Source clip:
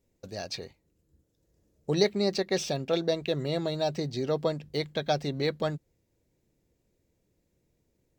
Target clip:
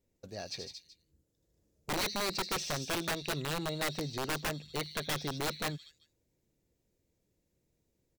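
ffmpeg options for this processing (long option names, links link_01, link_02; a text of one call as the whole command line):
ffmpeg -i in.wav -filter_complex "[0:a]acrossover=split=2900[link_01][link_02];[link_01]aeval=exprs='(mod(14.1*val(0)+1,2)-1)/14.1':channel_layout=same[link_03];[link_02]aecho=1:1:77|94|156|228|378:0.531|0.355|0.531|0.531|0.168[link_04];[link_03][link_04]amix=inputs=2:normalize=0,volume=-5dB" out.wav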